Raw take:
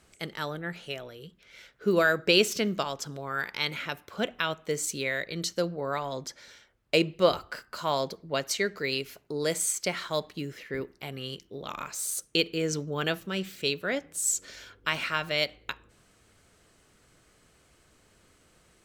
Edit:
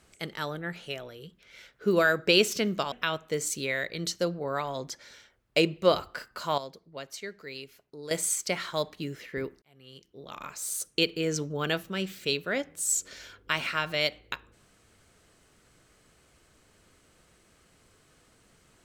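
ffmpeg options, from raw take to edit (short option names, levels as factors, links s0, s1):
-filter_complex "[0:a]asplit=5[s0][s1][s2][s3][s4];[s0]atrim=end=2.922[s5];[s1]atrim=start=4.288:end=7.952[s6];[s2]atrim=start=7.948:end=9.482,asetpts=PTS-STARTPTS,volume=0.282[s7];[s3]atrim=start=9.478:end=10.99,asetpts=PTS-STARTPTS,afade=t=out:st=1.508:d=0.004:c=hsin[s8];[s4]atrim=start=10.99,asetpts=PTS-STARTPTS,afade=t=in:d=1.25[s9];[s5][s6]acrossfade=d=0.004:c1=hsin:c2=hsin[s10];[s10][s7]acrossfade=d=0.004:c1=hsin:c2=hsin[s11];[s8][s9]concat=n=2:v=0:a=1[s12];[s11][s12]acrossfade=d=0.004:c1=hsin:c2=hsin"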